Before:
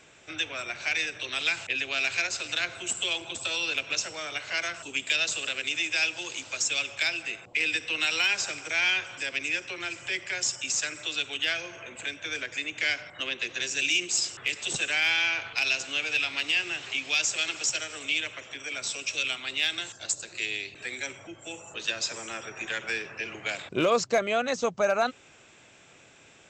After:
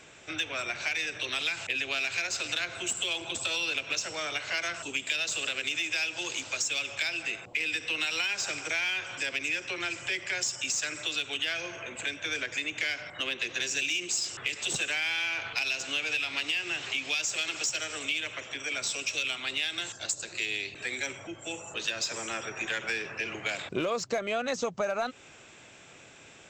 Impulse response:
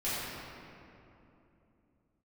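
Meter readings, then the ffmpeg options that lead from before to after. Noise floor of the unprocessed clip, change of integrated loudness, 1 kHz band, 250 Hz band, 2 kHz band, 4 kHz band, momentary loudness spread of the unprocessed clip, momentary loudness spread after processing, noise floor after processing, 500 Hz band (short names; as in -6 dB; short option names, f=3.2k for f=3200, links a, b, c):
-55 dBFS, -2.5 dB, -3.5 dB, -2.0 dB, -2.5 dB, -2.0 dB, 9 LU, 5 LU, -52 dBFS, -4.0 dB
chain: -filter_complex "[0:a]asplit=2[a][b];[b]asoftclip=type=tanh:threshold=-30.5dB,volume=-8.5dB[c];[a][c]amix=inputs=2:normalize=0,acompressor=threshold=-27dB:ratio=6"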